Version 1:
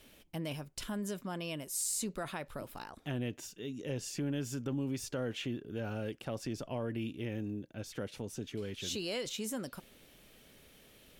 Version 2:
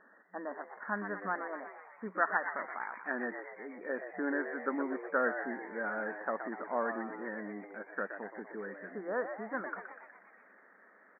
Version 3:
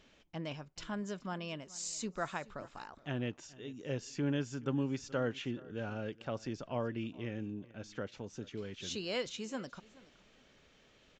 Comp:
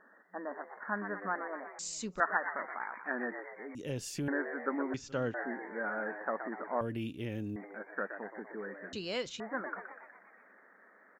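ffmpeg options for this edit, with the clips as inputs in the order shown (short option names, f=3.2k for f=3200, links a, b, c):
-filter_complex "[2:a]asplit=3[a][b][c];[0:a]asplit=2[d][e];[1:a]asplit=6[f][g][h][i][j][k];[f]atrim=end=1.792[l];[a]atrim=start=1.788:end=2.202[m];[g]atrim=start=2.198:end=3.752[n];[d]atrim=start=3.748:end=4.282[o];[h]atrim=start=4.278:end=4.942[p];[b]atrim=start=4.938:end=5.342[q];[i]atrim=start=5.338:end=6.812[r];[e]atrim=start=6.808:end=7.562[s];[j]atrim=start=7.558:end=8.932[t];[c]atrim=start=8.928:end=9.402[u];[k]atrim=start=9.398[v];[l][m]acrossfade=d=0.004:c1=hsin:c2=hsin[w];[w][n]acrossfade=d=0.004:c1=hsin:c2=hsin[x];[x][o]acrossfade=d=0.004:c1=hsin:c2=hsin[y];[y][p]acrossfade=d=0.004:c1=hsin:c2=hsin[z];[z][q]acrossfade=d=0.004:c1=hsin:c2=hsin[aa];[aa][r]acrossfade=d=0.004:c1=hsin:c2=hsin[ab];[ab][s]acrossfade=d=0.004:c1=hsin:c2=hsin[ac];[ac][t]acrossfade=d=0.004:c1=hsin:c2=hsin[ad];[ad][u]acrossfade=d=0.004:c1=hsin:c2=hsin[ae];[ae][v]acrossfade=d=0.004:c1=hsin:c2=hsin"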